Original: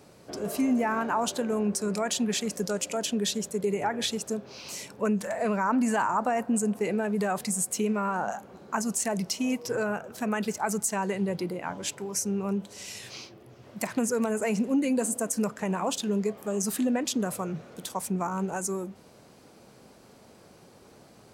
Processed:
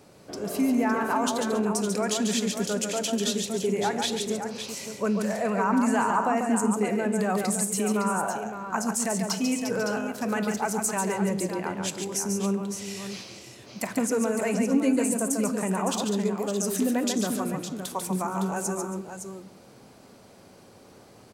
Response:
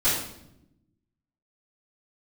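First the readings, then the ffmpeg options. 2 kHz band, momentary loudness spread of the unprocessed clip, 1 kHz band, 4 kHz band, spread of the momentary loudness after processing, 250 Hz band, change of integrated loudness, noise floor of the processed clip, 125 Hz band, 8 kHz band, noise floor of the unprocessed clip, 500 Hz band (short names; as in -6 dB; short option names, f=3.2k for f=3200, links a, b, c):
+2.0 dB, 10 LU, +2.0 dB, +2.0 dB, 9 LU, +2.5 dB, +2.0 dB, -52 dBFS, +2.5 dB, +2.0 dB, -54 dBFS, +2.0 dB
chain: -filter_complex "[0:a]aecho=1:1:143|275|561:0.531|0.15|0.376,asplit=2[a][b];[1:a]atrim=start_sample=2205[c];[b][c]afir=irnorm=-1:irlink=0,volume=-27dB[d];[a][d]amix=inputs=2:normalize=0"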